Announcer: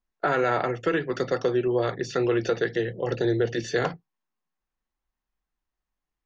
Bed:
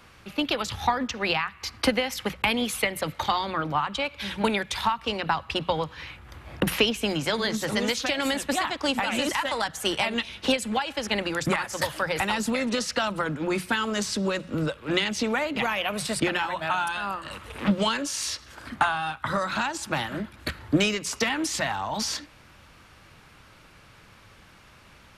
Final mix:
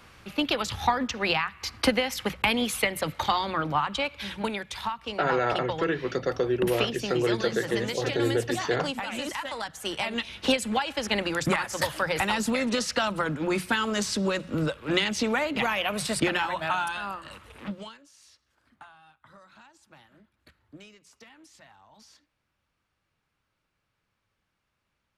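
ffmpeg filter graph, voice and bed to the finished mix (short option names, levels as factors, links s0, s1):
-filter_complex "[0:a]adelay=4950,volume=0.794[s0];[1:a]volume=2.11,afade=t=out:st=4.01:d=0.49:silence=0.473151,afade=t=in:st=9.85:d=0.64:silence=0.473151,afade=t=out:st=16.56:d=1.43:silence=0.0473151[s1];[s0][s1]amix=inputs=2:normalize=0"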